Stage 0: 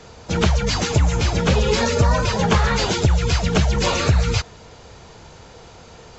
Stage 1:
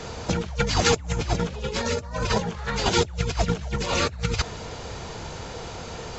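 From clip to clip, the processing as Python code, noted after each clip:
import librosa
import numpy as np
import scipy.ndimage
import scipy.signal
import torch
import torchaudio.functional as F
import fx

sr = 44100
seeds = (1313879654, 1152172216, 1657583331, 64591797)

y = fx.over_compress(x, sr, threshold_db=-24.0, ratio=-0.5)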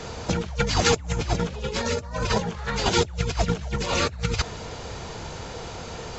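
y = x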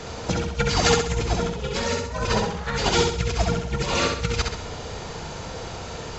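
y = fx.echo_feedback(x, sr, ms=66, feedback_pct=44, wet_db=-4.0)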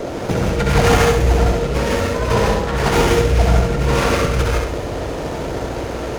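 y = fx.rev_gated(x, sr, seeds[0], gate_ms=190, shape='rising', drr_db=-2.0)
y = fx.dmg_noise_band(y, sr, seeds[1], low_hz=240.0, high_hz=650.0, level_db=-31.0)
y = fx.running_max(y, sr, window=9)
y = F.gain(torch.from_numpy(y), 3.5).numpy()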